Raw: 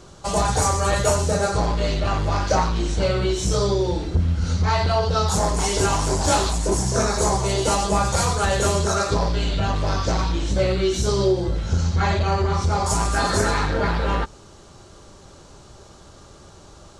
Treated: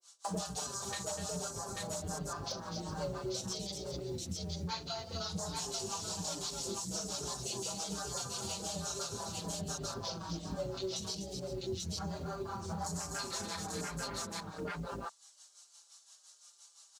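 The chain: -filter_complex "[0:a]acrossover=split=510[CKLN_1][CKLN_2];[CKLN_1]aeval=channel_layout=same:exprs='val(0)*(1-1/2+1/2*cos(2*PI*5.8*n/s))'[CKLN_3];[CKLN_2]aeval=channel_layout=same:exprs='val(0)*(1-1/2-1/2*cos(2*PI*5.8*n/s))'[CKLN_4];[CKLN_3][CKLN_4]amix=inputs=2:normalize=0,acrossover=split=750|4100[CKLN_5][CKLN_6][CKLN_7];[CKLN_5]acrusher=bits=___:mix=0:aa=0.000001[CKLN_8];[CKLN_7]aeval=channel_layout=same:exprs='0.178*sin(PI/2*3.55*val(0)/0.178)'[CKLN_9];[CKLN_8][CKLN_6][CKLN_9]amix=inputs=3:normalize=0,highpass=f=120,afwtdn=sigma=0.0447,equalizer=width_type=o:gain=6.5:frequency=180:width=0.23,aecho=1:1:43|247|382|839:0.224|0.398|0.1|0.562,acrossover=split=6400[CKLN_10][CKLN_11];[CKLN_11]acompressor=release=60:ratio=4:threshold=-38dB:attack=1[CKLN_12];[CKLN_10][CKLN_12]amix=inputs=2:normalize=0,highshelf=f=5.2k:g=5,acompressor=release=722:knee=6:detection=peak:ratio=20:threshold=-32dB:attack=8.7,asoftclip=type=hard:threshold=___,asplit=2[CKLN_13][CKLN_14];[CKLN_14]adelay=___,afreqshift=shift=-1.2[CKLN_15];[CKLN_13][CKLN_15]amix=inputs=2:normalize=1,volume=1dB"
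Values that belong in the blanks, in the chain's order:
5, -27dB, 5.4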